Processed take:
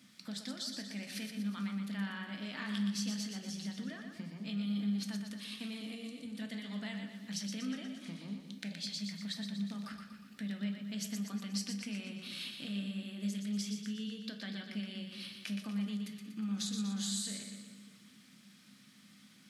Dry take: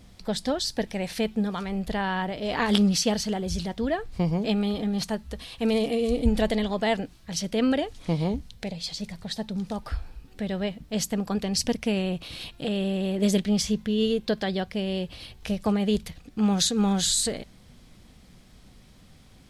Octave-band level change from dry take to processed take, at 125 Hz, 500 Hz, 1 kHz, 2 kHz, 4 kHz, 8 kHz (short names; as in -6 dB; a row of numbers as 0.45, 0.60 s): -12.5, -26.5, -21.0, -11.0, -11.0, -12.5 dB